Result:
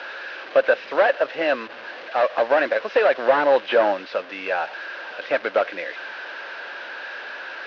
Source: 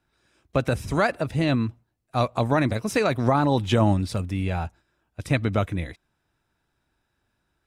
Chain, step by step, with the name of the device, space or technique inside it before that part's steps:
digital answering machine (band-pass filter 350–3,000 Hz; linear delta modulator 32 kbit/s, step −38.5 dBFS; loudspeaker in its box 480–4,500 Hz, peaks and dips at 540 Hz +10 dB, 1,600 Hz +10 dB, 2,700 Hz +5 dB)
level +5.5 dB

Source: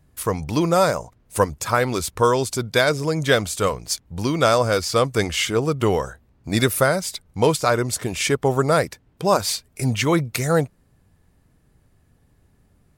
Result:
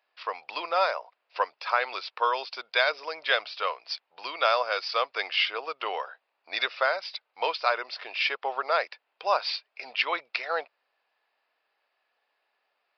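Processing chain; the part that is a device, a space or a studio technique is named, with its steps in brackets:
musical greeting card (downsampling to 11,025 Hz; high-pass filter 640 Hz 24 dB per octave; parametric band 2,600 Hz +7 dB 0.3 octaves)
level −4 dB

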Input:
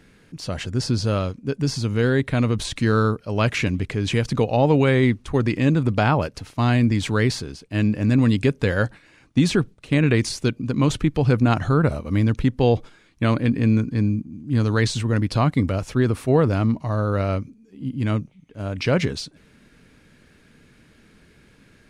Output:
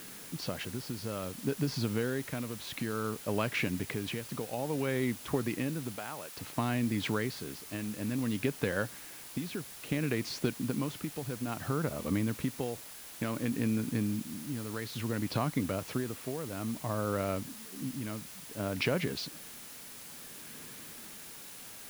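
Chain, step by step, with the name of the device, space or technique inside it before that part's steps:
medium wave at night (band-pass filter 150–4,200 Hz; downward compressor, threshold −29 dBFS, peak gain reduction 15.5 dB; amplitude tremolo 0.58 Hz, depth 59%; steady tone 10,000 Hz −57 dBFS; white noise bed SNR 13 dB)
0:05.96–0:06.37: low-shelf EQ 340 Hz −11 dB
level +1.5 dB

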